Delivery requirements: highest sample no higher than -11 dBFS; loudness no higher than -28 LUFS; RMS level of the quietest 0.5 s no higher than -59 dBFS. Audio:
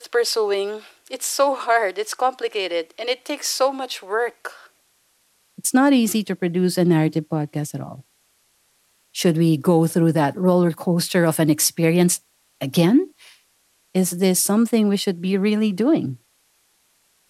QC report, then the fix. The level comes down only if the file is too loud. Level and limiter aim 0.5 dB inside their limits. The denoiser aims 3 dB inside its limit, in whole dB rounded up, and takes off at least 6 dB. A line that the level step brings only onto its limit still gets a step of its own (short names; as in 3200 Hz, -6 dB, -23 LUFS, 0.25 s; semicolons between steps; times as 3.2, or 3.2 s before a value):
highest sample -5.5 dBFS: fail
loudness -20.0 LUFS: fail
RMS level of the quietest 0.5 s -63 dBFS: OK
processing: gain -8.5 dB